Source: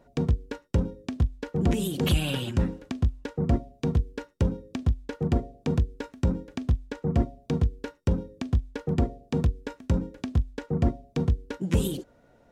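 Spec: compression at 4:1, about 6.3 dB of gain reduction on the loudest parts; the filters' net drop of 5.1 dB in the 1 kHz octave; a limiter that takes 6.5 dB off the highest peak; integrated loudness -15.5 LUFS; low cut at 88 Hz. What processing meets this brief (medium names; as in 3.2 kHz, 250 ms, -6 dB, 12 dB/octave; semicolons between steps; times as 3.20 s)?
high-pass 88 Hz; peaking EQ 1 kHz -8 dB; compression 4:1, threshold -28 dBFS; trim +21.5 dB; peak limiter -2 dBFS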